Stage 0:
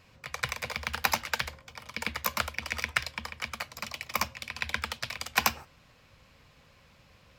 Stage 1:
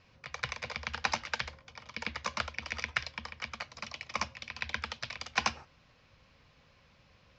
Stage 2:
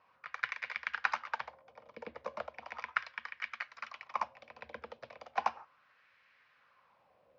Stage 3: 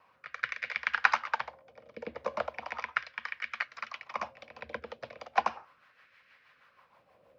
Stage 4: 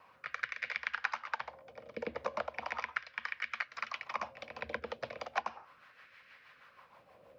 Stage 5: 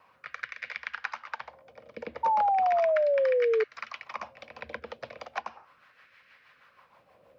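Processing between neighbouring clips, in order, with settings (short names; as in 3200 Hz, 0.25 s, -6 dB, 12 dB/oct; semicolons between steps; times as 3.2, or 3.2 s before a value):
steep low-pass 6400 Hz 48 dB/oct; gain -4 dB
LFO band-pass sine 0.36 Hz 480–1800 Hz; gain +4.5 dB
rotary speaker horn 0.7 Hz, later 6.3 Hz, at 2.92; gain +8 dB
compressor 4:1, threshold -37 dBFS, peak gain reduction 17 dB; gain +3.5 dB
painted sound fall, 2.23–3.64, 430–920 Hz -24 dBFS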